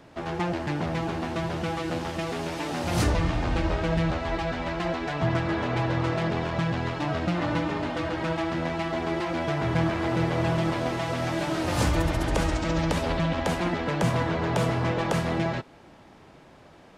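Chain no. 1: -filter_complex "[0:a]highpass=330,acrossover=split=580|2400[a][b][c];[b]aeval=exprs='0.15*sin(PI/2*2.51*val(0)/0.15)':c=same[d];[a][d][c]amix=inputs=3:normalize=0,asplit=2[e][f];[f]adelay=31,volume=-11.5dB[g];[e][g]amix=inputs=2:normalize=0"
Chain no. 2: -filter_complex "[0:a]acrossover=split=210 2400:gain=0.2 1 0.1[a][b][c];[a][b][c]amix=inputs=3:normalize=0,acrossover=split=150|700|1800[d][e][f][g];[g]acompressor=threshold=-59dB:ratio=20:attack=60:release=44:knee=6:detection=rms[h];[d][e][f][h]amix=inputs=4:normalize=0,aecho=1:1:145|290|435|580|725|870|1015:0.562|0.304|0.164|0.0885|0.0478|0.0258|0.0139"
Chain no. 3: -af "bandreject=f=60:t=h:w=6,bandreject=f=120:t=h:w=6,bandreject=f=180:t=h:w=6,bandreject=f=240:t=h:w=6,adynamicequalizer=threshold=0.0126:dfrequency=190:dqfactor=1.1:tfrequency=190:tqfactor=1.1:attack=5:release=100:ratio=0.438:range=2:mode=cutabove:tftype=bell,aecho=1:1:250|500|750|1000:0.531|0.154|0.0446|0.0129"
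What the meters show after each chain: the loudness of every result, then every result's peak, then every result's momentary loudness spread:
-22.5, -28.5, -27.5 LUFS; -10.5, -13.5, -12.0 dBFS; 3, 4, 4 LU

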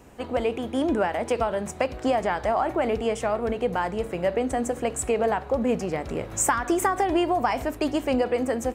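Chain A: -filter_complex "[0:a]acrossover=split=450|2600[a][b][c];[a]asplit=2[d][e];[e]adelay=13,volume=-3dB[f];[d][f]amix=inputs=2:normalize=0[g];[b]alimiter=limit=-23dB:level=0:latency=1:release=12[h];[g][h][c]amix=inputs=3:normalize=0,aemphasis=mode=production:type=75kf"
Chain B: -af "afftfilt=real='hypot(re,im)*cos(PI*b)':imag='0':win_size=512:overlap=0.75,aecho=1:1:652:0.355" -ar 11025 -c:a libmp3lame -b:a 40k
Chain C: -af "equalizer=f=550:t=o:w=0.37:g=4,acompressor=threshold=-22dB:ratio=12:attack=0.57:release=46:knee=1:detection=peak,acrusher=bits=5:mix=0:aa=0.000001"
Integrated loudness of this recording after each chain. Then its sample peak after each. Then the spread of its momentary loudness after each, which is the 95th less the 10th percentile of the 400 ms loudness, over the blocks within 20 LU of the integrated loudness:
-23.5, -30.0, -28.0 LUFS; -1.0, -11.5, -18.0 dBFS; 8, 8, 3 LU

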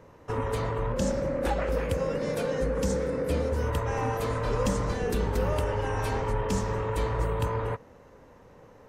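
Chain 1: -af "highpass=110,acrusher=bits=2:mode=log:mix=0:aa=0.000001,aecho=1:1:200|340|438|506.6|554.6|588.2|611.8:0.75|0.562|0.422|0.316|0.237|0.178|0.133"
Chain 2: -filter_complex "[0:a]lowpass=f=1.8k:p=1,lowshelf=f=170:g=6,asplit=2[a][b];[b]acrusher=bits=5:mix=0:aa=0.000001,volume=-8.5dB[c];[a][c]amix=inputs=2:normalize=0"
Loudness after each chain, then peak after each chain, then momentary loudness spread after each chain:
-26.0, -24.5 LUFS; -11.5, -10.0 dBFS; 5, 3 LU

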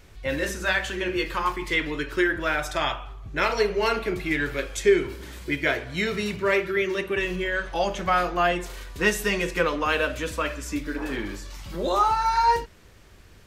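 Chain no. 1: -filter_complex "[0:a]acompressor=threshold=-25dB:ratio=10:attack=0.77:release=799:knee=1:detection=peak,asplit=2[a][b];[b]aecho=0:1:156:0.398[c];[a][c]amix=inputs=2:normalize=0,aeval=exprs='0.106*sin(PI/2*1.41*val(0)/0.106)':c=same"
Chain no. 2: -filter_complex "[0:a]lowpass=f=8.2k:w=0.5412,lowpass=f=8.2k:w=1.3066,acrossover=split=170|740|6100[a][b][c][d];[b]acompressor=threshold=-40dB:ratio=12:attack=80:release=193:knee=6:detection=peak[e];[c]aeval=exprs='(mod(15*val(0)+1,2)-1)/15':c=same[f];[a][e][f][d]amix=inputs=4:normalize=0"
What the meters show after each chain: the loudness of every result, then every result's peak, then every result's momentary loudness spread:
-27.5, -29.5 LUFS; -19.5, -17.0 dBFS; 5, 7 LU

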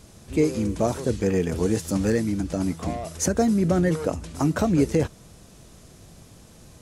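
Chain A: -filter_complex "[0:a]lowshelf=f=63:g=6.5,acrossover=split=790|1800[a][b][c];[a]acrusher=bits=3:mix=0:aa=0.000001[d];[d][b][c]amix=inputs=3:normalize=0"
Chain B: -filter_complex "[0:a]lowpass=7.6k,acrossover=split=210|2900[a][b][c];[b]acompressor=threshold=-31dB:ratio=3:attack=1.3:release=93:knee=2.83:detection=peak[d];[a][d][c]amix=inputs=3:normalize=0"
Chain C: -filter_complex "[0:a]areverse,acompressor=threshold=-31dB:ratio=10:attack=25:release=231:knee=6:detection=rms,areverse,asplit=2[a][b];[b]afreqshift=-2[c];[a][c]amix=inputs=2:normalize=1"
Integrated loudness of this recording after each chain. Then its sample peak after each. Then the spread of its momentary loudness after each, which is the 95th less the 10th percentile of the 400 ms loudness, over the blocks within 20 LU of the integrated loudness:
-22.5, -28.0, -38.5 LUFS; -8.5, -14.0, -23.5 dBFS; 7, 6, 15 LU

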